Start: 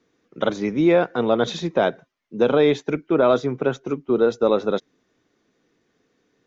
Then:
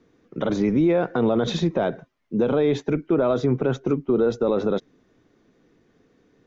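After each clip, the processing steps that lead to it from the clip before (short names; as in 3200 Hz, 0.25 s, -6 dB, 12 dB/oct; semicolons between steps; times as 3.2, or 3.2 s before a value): tilt -2 dB/oct; limiter -16 dBFS, peak gain reduction 11.5 dB; gain +4 dB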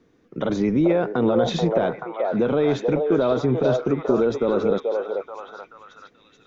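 delay with a stepping band-pass 0.433 s, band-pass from 630 Hz, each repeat 0.7 oct, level 0 dB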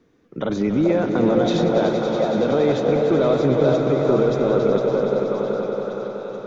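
swelling echo 94 ms, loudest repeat 5, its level -11.5 dB; warbling echo 0.3 s, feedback 55%, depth 86 cents, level -12 dB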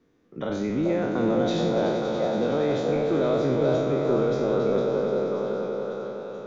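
spectral trails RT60 0.87 s; gain -7.5 dB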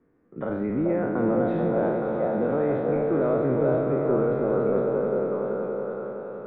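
LPF 1900 Hz 24 dB/oct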